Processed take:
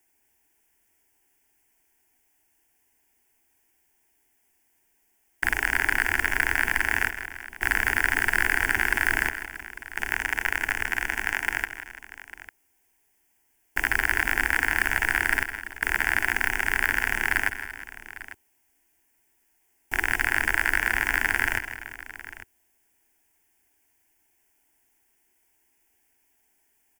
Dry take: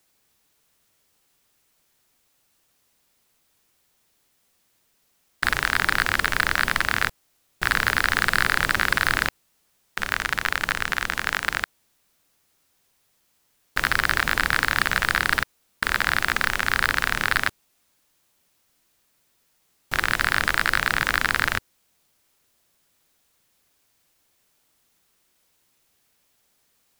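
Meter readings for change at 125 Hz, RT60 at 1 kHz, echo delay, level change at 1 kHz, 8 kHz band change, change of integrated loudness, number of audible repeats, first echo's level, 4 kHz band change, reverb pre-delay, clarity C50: -5.0 dB, no reverb, 161 ms, -6.0 dB, -2.0 dB, -2.0 dB, 3, -11.5 dB, -9.5 dB, no reverb, no reverb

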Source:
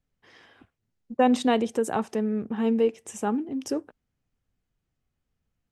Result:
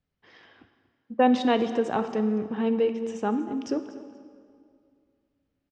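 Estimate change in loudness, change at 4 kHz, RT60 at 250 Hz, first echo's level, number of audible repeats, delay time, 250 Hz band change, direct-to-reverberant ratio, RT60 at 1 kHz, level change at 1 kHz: 0.0 dB, 0.0 dB, 2.5 s, -16.5 dB, 2, 239 ms, 0.0 dB, 9.0 dB, 2.2 s, +0.5 dB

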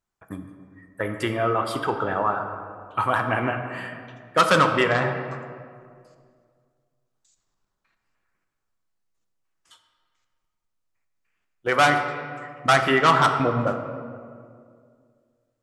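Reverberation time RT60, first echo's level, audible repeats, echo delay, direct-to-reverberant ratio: 2.1 s, no echo, no echo, no echo, 5.0 dB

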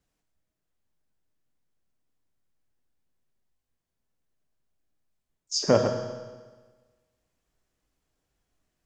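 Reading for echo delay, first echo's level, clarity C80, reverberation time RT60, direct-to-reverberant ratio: no echo, no echo, 7.5 dB, 1.4 s, 4.0 dB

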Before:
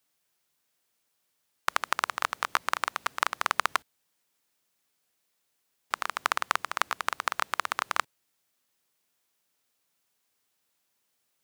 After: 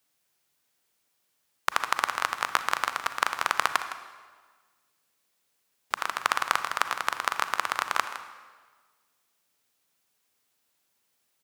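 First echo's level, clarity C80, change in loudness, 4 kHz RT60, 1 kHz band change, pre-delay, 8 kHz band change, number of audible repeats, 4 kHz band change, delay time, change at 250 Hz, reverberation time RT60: -13.0 dB, 9.5 dB, +2.0 dB, 1.3 s, +2.0 dB, 33 ms, +2.0 dB, 1, +2.0 dB, 161 ms, +2.0 dB, 1.5 s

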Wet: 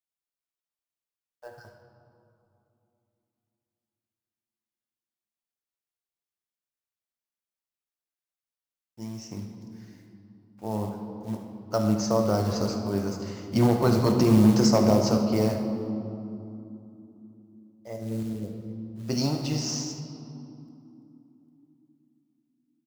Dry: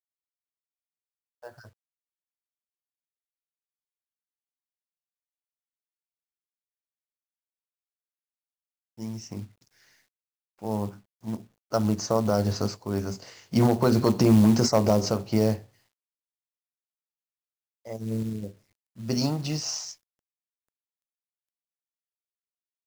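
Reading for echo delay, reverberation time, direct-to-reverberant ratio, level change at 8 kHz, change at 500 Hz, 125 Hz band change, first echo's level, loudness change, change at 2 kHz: 75 ms, 3.0 s, 3.0 dB, -0.5 dB, +0.5 dB, 0.0 dB, -12.5 dB, 0.0 dB, 0.0 dB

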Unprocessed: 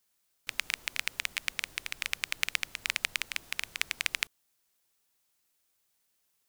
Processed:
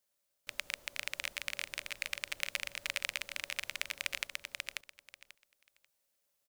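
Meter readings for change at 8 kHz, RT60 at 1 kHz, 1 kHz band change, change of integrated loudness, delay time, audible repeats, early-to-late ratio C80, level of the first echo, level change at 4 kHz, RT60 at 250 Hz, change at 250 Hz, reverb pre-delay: -5.0 dB, no reverb, -4.5 dB, -5.5 dB, 539 ms, 3, no reverb, -3.5 dB, -5.0 dB, no reverb, -4.5 dB, no reverb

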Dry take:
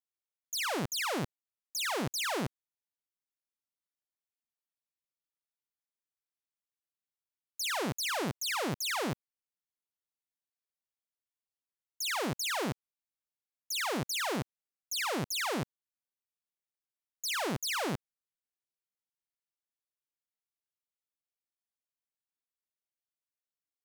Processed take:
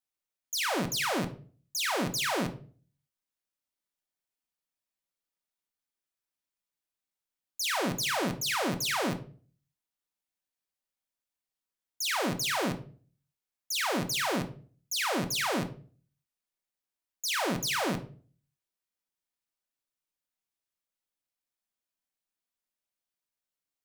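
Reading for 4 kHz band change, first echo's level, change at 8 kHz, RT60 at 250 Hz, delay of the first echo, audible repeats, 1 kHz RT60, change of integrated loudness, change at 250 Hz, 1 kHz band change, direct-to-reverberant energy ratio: +3.0 dB, no echo, +3.0 dB, 0.50 s, no echo, no echo, 0.35 s, +3.0 dB, +4.5 dB, +3.5 dB, 6.0 dB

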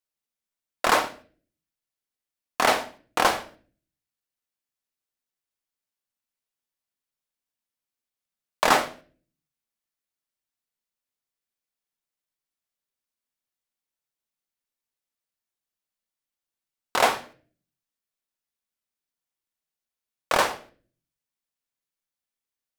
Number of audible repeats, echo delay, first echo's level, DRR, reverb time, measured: no echo, no echo, no echo, 7.5 dB, 0.45 s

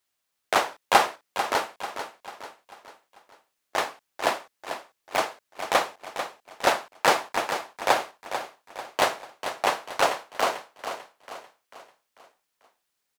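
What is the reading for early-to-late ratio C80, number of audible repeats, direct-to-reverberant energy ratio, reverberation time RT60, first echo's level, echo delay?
no reverb, 4, no reverb, no reverb, -9.5 dB, 443 ms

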